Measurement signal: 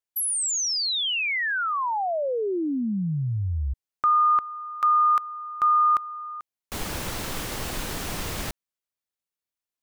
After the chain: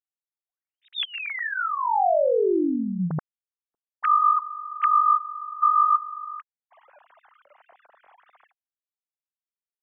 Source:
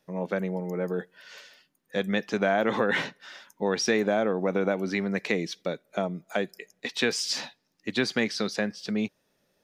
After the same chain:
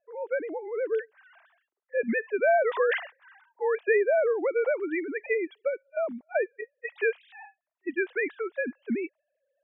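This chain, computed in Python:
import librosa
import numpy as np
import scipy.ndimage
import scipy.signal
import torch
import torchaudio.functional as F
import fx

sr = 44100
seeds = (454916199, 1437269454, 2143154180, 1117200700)

y = fx.sine_speech(x, sr)
y = fx.env_lowpass(y, sr, base_hz=1300.0, full_db=-16.0)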